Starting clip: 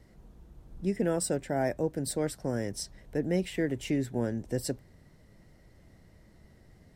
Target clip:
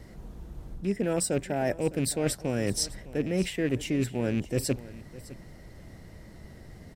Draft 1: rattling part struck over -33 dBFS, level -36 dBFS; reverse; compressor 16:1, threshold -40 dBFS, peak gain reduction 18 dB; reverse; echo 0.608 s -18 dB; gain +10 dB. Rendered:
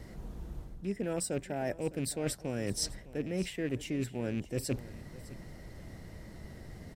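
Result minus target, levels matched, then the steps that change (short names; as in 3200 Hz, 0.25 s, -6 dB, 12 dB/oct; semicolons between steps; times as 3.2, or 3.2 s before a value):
compressor: peak gain reduction +6.5 dB
change: compressor 16:1, threshold -33 dBFS, peak gain reduction 11.5 dB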